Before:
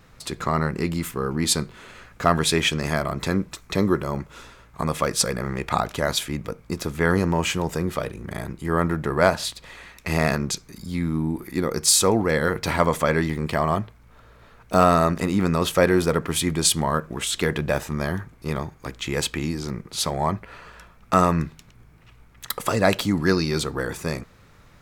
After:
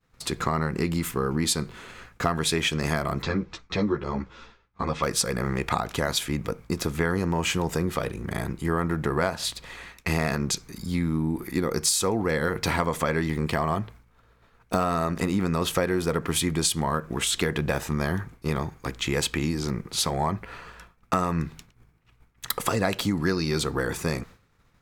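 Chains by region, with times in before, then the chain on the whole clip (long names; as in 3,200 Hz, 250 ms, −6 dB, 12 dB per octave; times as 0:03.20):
0:03.22–0:05.03: low-pass filter 5,500 Hz 24 dB per octave + string-ensemble chorus
whole clip: notch filter 600 Hz, Q 12; downward expander −41 dBFS; downward compressor, threshold −23 dBFS; level +2 dB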